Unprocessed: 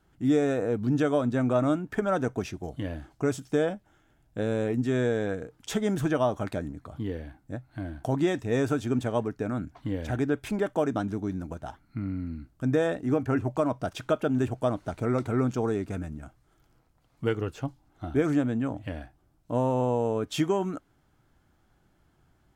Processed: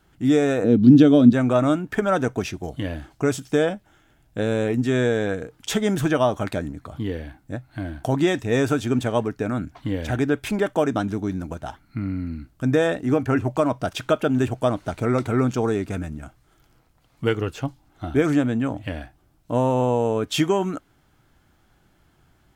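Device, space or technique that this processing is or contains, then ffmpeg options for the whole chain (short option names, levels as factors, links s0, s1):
presence and air boost: -filter_complex "[0:a]equalizer=f=2900:t=o:w=1.8:g=4,highshelf=f=9100:g=5,asettb=1/sr,asplit=3[s0][s1][s2];[s0]atrim=end=0.644[s3];[s1]atrim=start=0.64:end=1.33,asetpts=PTS-STARTPTS,afade=t=in:d=0.004:c=qsin,afade=t=out:st=0.686:d=0.004:c=qsin,equalizer=f=125:t=o:w=1:g=3,equalizer=f=250:t=o:w=1:g=12,equalizer=f=1000:t=o:w=1:g=-8,equalizer=f=2000:t=o:w=1:g=-6,equalizer=f=4000:t=o:w=1:g=8,equalizer=f=8000:t=o:w=1:g=-11[s4];[s2]atrim=start=1.326[s5];[s3][s4]acrossfade=d=0.004:c1=hsin:c2=qsin[s6];[s6][s5]acrossfade=d=0.004:c1=qsin:c2=hsin,volume=1.78"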